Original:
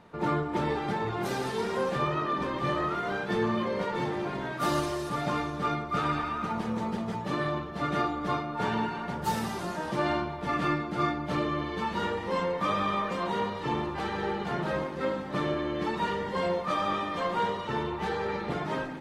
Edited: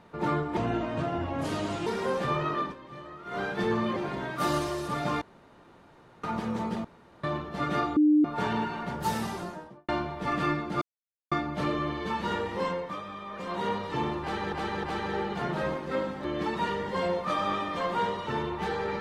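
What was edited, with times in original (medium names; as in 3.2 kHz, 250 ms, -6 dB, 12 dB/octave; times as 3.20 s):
0.57–1.58 s: speed 78%
2.32–3.10 s: dip -15 dB, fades 0.14 s
3.68–4.18 s: delete
5.43–6.45 s: room tone
7.06–7.45 s: room tone
8.18–8.46 s: bleep 301 Hz -17 dBFS
9.46–10.10 s: studio fade out
11.03 s: insert silence 0.50 s
12.32–13.39 s: dip -12 dB, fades 0.41 s
13.93–14.24 s: loop, 3 plays
15.34–15.65 s: delete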